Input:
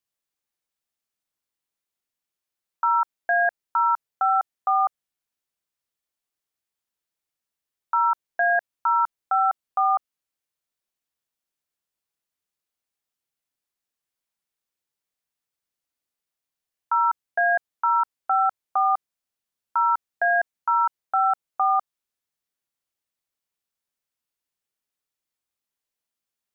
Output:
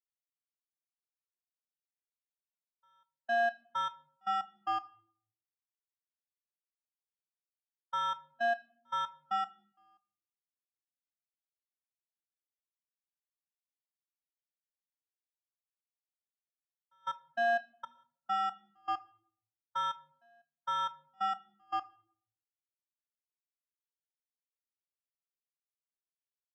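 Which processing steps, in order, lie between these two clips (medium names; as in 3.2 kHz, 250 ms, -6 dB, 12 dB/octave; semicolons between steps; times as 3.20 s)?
low-pass 1.7 kHz 24 dB/octave; bass shelf 420 Hz -4.5 dB; saturation -27.5 dBFS, distortion -8 dB; trance gate "x.x...xxx" 116 bpm -24 dB; reverberation RT60 0.85 s, pre-delay 7 ms, DRR 9.5 dB; spectral contrast expander 1.5:1; trim +1.5 dB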